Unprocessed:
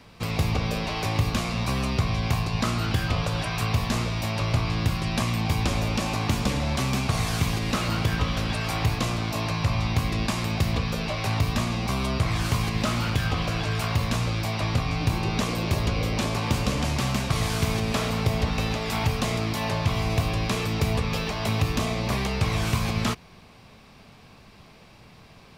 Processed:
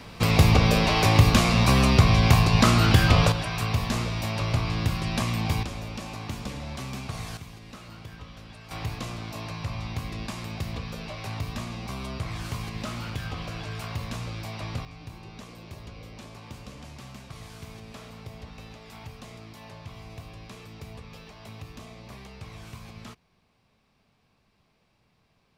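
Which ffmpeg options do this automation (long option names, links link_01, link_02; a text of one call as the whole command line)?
ffmpeg -i in.wav -af "asetnsamples=nb_out_samples=441:pad=0,asendcmd='3.32 volume volume -1.5dB;5.63 volume volume -10dB;7.37 volume volume -18.5dB;8.71 volume volume -8.5dB;14.85 volume volume -18dB',volume=7dB" out.wav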